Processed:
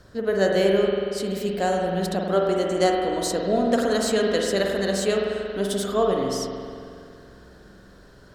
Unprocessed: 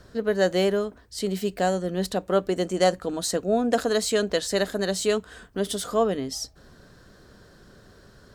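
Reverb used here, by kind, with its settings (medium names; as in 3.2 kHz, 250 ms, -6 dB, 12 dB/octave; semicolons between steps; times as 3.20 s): spring tank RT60 2.3 s, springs 46 ms, chirp 60 ms, DRR -0.5 dB; trim -1 dB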